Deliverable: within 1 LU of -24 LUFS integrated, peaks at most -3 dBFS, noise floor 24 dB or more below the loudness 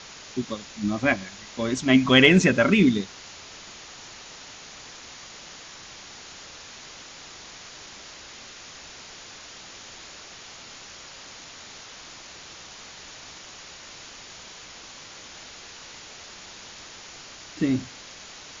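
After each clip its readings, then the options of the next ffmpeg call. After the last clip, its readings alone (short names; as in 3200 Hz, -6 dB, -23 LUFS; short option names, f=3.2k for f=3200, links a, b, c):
noise floor -44 dBFS; noise floor target -46 dBFS; loudness -21.5 LUFS; peak -2.0 dBFS; loudness target -24.0 LUFS
-> -af "afftdn=nr=6:nf=-44"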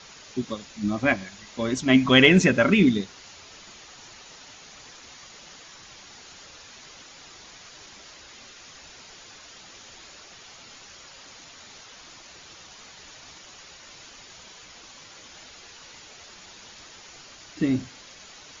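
noise floor -48 dBFS; loudness -21.5 LUFS; peak -2.0 dBFS; loudness target -24.0 LUFS
-> -af "volume=-2.5dB"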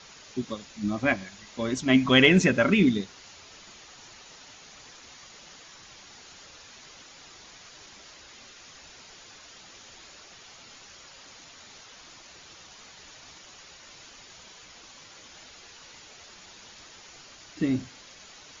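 loudness -24.0 LUFS; peak -4.5 dBFS; noise floor -50 dBFS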